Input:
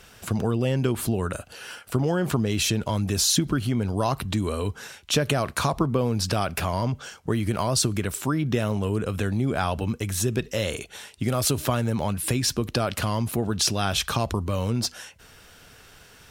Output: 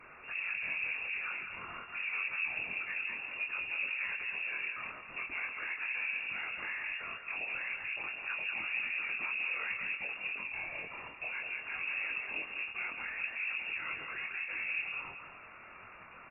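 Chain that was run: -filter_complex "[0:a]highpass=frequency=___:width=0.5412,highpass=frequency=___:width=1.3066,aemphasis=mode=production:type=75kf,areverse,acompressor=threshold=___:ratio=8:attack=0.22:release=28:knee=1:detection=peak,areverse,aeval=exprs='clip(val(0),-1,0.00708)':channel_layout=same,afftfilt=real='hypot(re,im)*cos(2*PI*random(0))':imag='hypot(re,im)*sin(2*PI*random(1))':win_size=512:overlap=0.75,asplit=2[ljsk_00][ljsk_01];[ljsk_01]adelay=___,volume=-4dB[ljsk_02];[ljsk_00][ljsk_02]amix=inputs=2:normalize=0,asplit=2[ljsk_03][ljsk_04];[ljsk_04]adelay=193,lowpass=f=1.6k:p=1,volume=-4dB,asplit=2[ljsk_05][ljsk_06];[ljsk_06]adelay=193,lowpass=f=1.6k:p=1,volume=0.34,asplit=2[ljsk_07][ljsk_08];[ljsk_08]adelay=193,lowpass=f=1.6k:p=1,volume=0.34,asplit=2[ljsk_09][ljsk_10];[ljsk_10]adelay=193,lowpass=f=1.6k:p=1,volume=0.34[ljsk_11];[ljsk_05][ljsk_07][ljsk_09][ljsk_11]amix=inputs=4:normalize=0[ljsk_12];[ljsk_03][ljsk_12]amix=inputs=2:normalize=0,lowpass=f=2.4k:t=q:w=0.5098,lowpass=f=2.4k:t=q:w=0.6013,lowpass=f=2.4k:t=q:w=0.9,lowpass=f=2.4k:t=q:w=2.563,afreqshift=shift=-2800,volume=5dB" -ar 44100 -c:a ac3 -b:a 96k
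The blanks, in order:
180, 180, -31dB, 23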